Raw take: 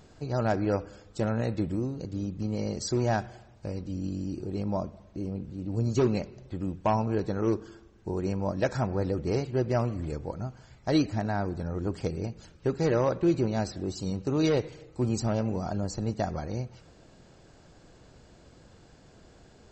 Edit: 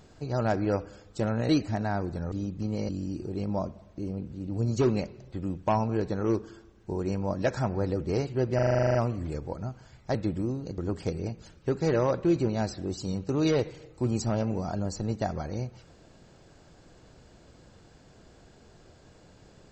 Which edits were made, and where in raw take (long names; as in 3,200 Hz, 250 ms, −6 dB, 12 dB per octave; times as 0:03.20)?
0:01.49–0:02.12: swap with 0:10.93–0:11.76
0:02.69–0:04.07: remove
0:09.73: stutter 0.04 s, 11 plays